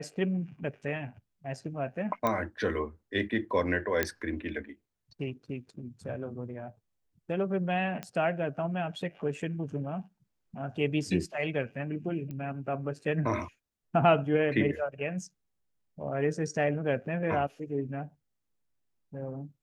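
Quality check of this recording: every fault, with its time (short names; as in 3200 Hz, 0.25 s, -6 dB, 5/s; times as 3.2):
2.27 pop -15 dBFS
4.03 pop -11 dBFS
8.03 pop -22 dBFS
12.31 pop -28 dBFS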